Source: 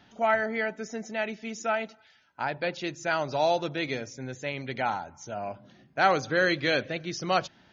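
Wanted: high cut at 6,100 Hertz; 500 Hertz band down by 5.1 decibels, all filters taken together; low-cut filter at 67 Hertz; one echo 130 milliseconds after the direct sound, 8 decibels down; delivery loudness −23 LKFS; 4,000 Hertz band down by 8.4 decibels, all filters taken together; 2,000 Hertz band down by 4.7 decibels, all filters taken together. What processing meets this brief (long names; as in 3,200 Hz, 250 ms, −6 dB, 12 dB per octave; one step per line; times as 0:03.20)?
high-pass filter 67 Hz
low-pass filter 6,100 Hz
parametric band 500 Hz −6.5 dB
parametric band 2,000 Hz −4 dB
parametric band 4,000 Hz −8.5 dB
single-tap delay 130 ms −8 dB
level +9.5 dB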